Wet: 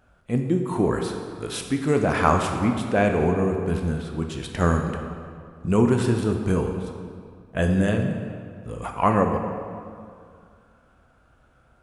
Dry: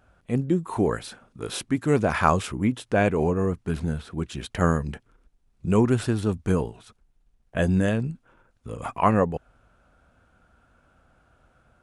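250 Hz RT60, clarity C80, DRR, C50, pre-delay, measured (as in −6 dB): 2.3 s, 6.0 dB, 3.5 dB, 5.0 dB, 16 ms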